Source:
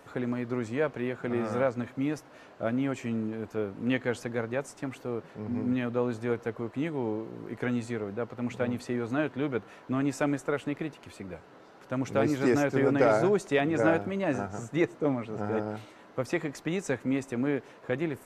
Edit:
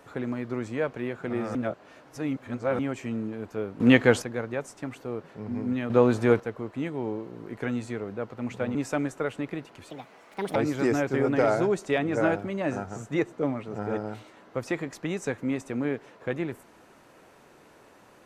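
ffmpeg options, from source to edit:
-filter_complex "[0:a]asplit=10[s0][s1][s2][s3][s4][s5][s6][s7][s8][s9];[s0]atrim=end=1.552[s10];[s1]atrim=start=1.548:end=2.792,asetpts=PTS-STARTPTS,areverse[s11];[s2]atrim=start=2.788:end=3.802[s12];[s3]atrim=start=3.798:end=4.222,asetpts=PTS-STARTPTS,volume=3.35[s13];[s4]atrim=start=4.218:end=5.902[s14];[s5]atrim=start=5.898:end=6.402,asetpts=PTS-STARTPTS,volume=2.82[s15];[s6]atrim=start=6.398:end=8.752[s16];[s7]atrim=start=10.028:end=11.184[s17];[s8]atrim=start=11.18:end=12.18,asetpts=PTS-STARTPTS,asetrate=67032,aresample=44100,atrim=end_sample=29013,asetpts=PTS-STARTPTS[s18];[s9]atrim=start=12.176[s19];[s10][s11]acrossfade=d=0.004:c1=hsin:c2=hsin[s20];[s20][s12]acrossfade=d=0.004:c1=hsin:c2=hsin[s21];[s21][s13]acrossfade=d=0.004:c1=hsin:c2=hsin[s22];[s22][s14]acrossfade=d=0.004:c1=hsin:c2=hsin[s23];[s23][s15]acrossfade=d=0.004:c1=hsin:c2=hsin[s24];[s24][s16]acrossfade=d=0.004:c1=hsin:c2=hsin[s25];[s25][s17]acrossfade=d=0.004:c1=hsin:c2=hsin[s26];[s26][s18]acrossfade=d=0.004:c1=hsin:c2=hsin[s27];[s27][s19]acrossfade=d=0.004:c1=hsin:c2=hsin"

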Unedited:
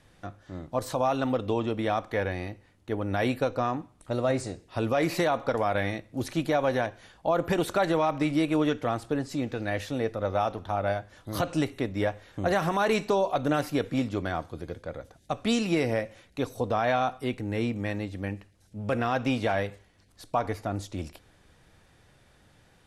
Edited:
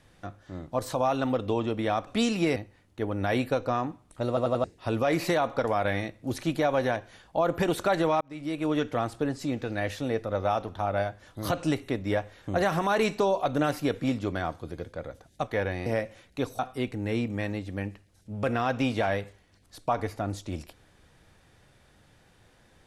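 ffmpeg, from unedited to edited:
-filter_complex "[0:a]asplit=11[s0][s1][s2][s3][s4][s5][s6][s7][s8][s9][s10];[s0]atrim=end=2.072[s11];[s1]atrim=start=15.368:end=15.862[s12];[s2]atrim=start=2.458:end=4.272[s13];[s3]atrim=start=4.178:end=4.272[s14];[s4]atrim=start=4.178:end=4.272[s15];[s5]atrim=start=4.178:end=4.272[s16];[s6]atrim=start=4.538:end=8.11,asetpts=PTS-STARTPTS,afade=t=out:st=3.568:d=0.004:c=hsin[s17];[s7]atrim=start=8.11:end=15.372,asetpts=PTS-STARTPTS,afade=t=in:d=0.65[s18];[s8]atrim=start=2.068:end=2.462[s19];[s9]atrim=start=15.858:end=16.592[s20];[s10]atrim=start=17.048[s21];[s11][s12]acrossfade=d=0.004:c1=hsin:c2=hsin[s22];[s22][s13]acrossfade=d=0.004:c1=hsin:c2=hsin[s23];[s23][s14]acrossfade=d=0.004:c1=hsin:c2=hsin[s24];[s24][s15]acrossfade=d=0.004:c1=hsin:c2=hsin[s25];[s25][s16]acrossfade=d=0.004:c1=hsin:c2=hsin[s26];[s17][s18]concat=n=2:v=0:a=1[s27];[s26][s27]acrossfade=d=0.004:c1=hsin:c2=hsin[s28];[s28][s19]acrossfade=d=0.004:c1=hsin:c2=hsin[s29];[s29][s20]acrossfade=d=0.004:c1=hsin:c2=hsin[s30];[s30][s21]acrossfade=d=0.004:c1=hsin:c2=hsin"

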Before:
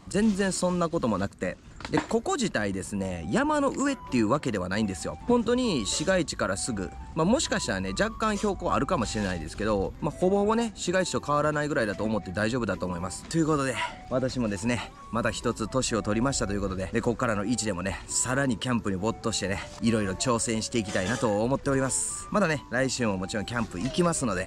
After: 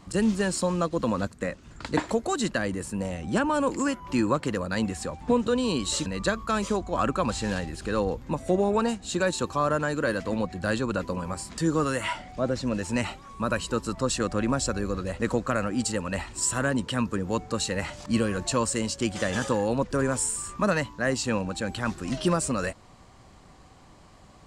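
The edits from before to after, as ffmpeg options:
-filter_complex "[0:a]asplit=2[s0][s1];[s0]atrim=end=6.062[s2];[s1]atrim=start=7.788[s3];[s2][s3]acrossfade=d=0.004:c1=hsin:c2=hsin"

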